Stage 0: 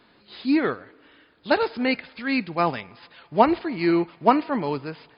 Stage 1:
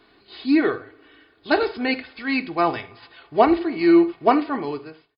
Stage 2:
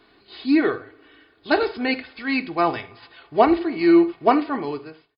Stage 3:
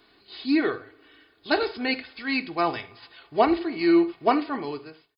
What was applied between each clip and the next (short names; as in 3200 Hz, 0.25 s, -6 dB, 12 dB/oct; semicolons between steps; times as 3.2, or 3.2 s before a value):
ending faded out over 0.70 s; comb 2.7 ms, depth 57%; on a send at -10 dB: reverb, pre-delay 3 ms
nothing audible
high shelf 4200 Hz +10.5 dB; gain -4.5 dB